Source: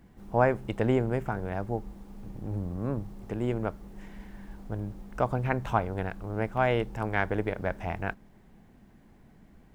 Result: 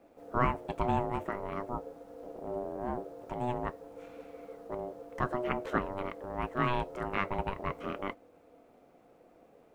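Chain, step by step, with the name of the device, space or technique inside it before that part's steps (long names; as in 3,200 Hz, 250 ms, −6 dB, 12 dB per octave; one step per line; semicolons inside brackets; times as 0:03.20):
alien voice (ring modulation 490 Hz; flanger 0.49 Hz, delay 3.3 ms, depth 2.7 ms, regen −69%)
level +2.5 dB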